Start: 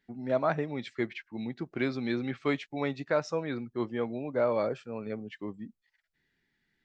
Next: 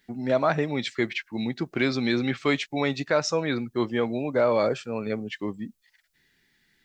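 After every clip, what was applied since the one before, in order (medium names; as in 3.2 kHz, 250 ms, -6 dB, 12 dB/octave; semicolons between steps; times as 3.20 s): treble shelf 3.2 kHz +11 dB; in parallel at +2 dB: peak limiter -22 dBFS, peak gain reduction 8.5 dB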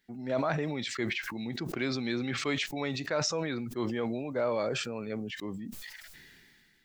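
decay stretcher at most 25 dB/s; trim -8.5 dB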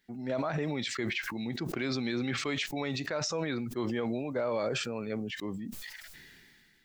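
peak limiter -23.5 dBFS, peak gain reduction 7.5 dB; trim +1 dB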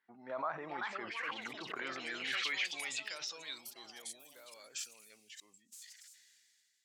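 band-pass sweep 1.1 kHz -> 7.3 kHz, 1.67–4.43 s; ever faster or slower copies 493 ms, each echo +5 st, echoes 2; trim +2 dB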